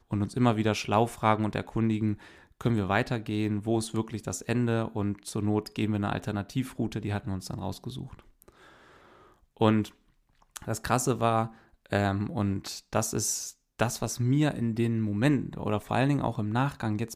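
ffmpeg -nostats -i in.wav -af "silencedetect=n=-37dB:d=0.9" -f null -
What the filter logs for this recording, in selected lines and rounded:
silence_start: 8.42
silence_end: 9.61 | silence_duration: 1.19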